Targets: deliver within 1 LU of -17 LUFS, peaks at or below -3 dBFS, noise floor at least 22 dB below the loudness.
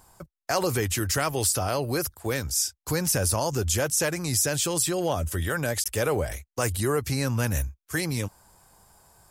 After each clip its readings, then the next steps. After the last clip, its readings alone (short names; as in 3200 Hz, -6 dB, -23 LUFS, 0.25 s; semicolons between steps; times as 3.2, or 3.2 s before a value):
dropouts 1; longest dropout 16 ms; loudness -26.0 LUFS; peak -10.5 dBFS; loudness target -17.0 LUFS
-> interpolate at 5.84, 16 ms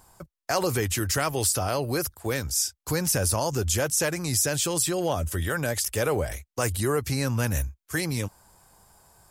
dropouts 0; loudness -26.0 LUFS; peak -10.5 dBFS; loudness target -17.0 LUFS
-> gain +9 dB; limiter -3 dBFS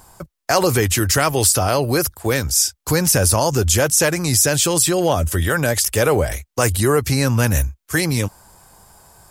loudness -17.0 LUFS; peak -3.0 dBFS; noise floor -75 dBFS